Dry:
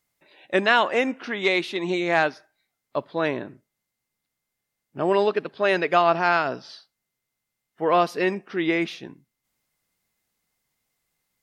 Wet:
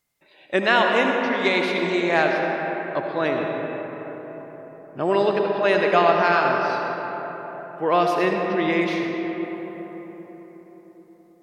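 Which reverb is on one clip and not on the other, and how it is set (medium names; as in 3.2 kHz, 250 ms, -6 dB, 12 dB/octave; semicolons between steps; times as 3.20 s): algorithmic reverb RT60 4.7 s, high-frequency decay 0.4×, pre-delay 40 ms, DRR 1 dB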